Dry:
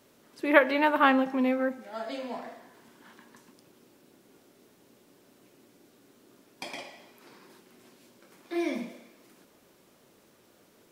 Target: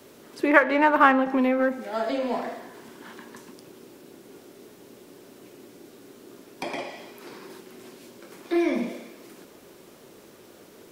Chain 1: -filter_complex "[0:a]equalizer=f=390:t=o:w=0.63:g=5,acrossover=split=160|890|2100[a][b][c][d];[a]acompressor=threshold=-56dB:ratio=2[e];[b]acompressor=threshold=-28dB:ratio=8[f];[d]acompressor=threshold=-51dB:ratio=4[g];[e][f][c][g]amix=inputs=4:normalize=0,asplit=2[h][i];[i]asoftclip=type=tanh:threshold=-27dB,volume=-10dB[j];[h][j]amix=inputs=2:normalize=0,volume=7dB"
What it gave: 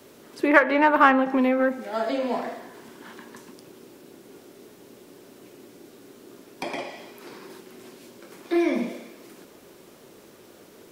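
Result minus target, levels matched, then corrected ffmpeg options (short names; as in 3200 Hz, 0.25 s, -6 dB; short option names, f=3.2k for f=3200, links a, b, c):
soft clip: distortion -5 dB
-filter_complex "[0:a]equalizer=f=390:t=o:w=0.63:g=5,acrossover=split=160|890|2100[a][b][c][d];[a]acompressor=threshold=-56dB:ratio=2[e];[b]acompressor=threshold=-28dB:ratio=8[f];[d]acompressor=threshold=-51dB:ratio=4[g];[e][f][c][g]amix=inputs=4:normalize=0,asplit=2[h][i];[i]asoftclip=type=tanh:threshold=-37.5dB,volume=-10dB[j];[h][j]amix=inputs=2:normalize=0,volume=7dB"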